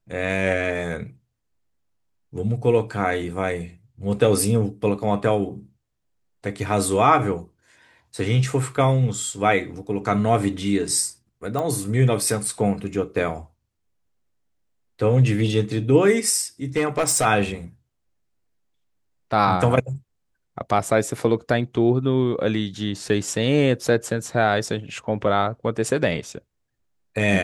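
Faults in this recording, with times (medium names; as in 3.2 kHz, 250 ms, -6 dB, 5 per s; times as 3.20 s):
11.59 s: pop -15 dBFS
16.76–17.26 s: clipped -15 dBFS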